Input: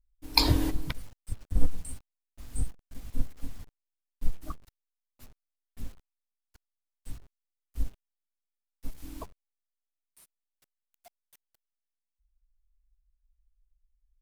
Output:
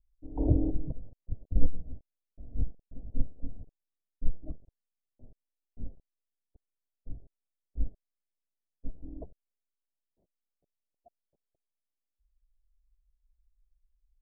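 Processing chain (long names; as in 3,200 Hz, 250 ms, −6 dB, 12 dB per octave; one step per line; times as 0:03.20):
Butterworth low-pass 680 Hz 48 dB per octave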